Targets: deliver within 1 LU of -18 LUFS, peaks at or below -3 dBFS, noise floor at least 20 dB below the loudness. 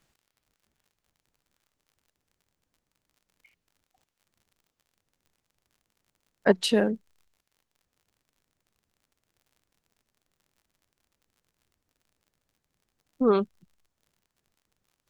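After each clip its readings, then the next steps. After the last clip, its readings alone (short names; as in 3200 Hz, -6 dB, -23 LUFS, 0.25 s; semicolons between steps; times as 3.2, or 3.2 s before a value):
ticks 51/s; loudness -25.0 LUFS; peak -7.0 dBFS; loudness target -18.0 LUFS
-> de-click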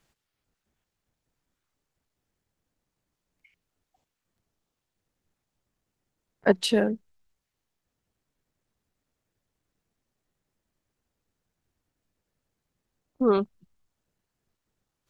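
ticks 0.13/s; loudness -25.0 LUFS; peak -7.0 dBFS; loudness target -18.0 LUFS
-> gain +7 dB; limiter -3 dBFS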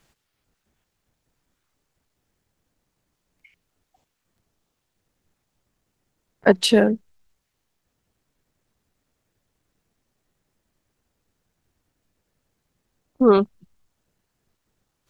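loudness -18.5 LUFS; peak -3.0 dBFS; noise floor -77 dBFS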